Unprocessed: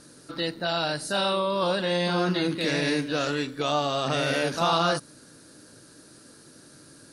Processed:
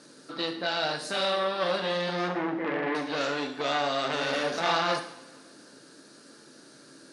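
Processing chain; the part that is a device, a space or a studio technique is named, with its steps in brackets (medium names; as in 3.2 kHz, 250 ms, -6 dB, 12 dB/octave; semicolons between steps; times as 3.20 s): 2.29–2.95 s: Chebyshev low-pass 2.1 kHz, order 8; public-address speaker with an overloaded transformer (transformer saturation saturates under 1.5 kHz; band-pass 230–6700 Hz); two-slope reverb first 0.64 s, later 2 s, from -17 dB, DRR 4.5 dB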